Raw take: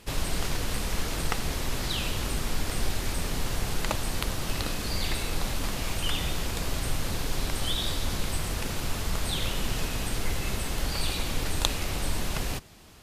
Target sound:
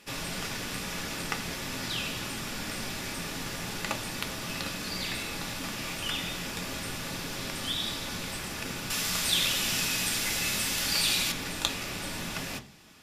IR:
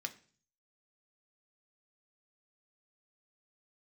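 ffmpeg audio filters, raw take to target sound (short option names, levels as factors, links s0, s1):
-filter_complex "[0:a]asettb=1/sr,asplit=3[s0][s1][s2];[s0]atrim=end=8.904[s3];[s1]atrim=start=8.9:end=11.32,asetpts=PTS-STARTPTS,afade=t=in:d=0.004:c=qsin,afade=t=out:st=2.416:d=0.004:c=qsin,highshelf=f=2200:g=11[s4];[s2]atrim=start=11.316[s5];[s3][s4]acrossfade=d=0.004:c1=hsin:c2=qsin[s6];[s6][s5]acrossfade=d=0.004:c1=qsin:c2=hsin[s7];[1:a]atrim=start_sample=2205[s8];[s7][s8]afir=irnorm=-1:irlink=0"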